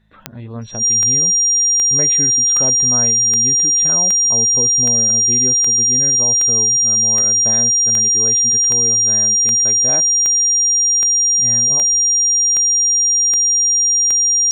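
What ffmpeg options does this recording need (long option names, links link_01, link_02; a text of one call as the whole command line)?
ffmpeg -i in.wav -af "adeclick=threshold=4,bandreject=frequency=53:width_type=h:width=4,bandreject=frequency=106:width_type=h:width=4,bandreject=frequency=159:width_type=h:width=4,bandreject=frequency=212:width_type=h:width=4,bandreject=frequency=5700:width=30" out.wav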